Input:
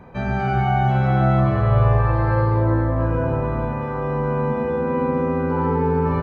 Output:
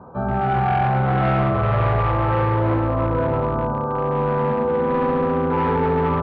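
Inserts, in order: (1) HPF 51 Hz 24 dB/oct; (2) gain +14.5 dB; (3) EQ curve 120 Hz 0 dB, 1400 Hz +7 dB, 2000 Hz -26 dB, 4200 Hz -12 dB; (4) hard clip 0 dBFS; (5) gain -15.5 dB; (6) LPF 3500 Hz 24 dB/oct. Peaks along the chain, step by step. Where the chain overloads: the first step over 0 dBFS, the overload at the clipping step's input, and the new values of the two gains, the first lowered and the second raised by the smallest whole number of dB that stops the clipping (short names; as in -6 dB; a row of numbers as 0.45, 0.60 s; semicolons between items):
-7.0, +7.5, +10.0, 0.0, -15.5, -14.5 dBFS; step 2, 10.0 dB; step 2 +4.5 dB, step 5 -5.5 dB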